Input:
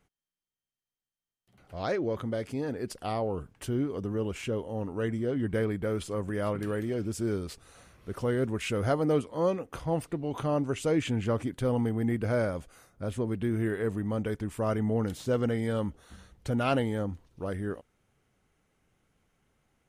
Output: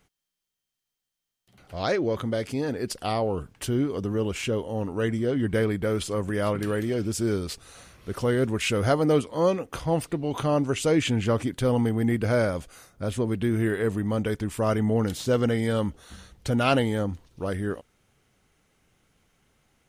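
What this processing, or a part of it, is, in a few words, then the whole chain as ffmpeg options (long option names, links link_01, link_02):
presence and air boost: -af "equalizer=frequency=4400:width_type=o:width=1.9:gain=5,highshelf=frequency=12000:gain=5.5,volume=4.5dB"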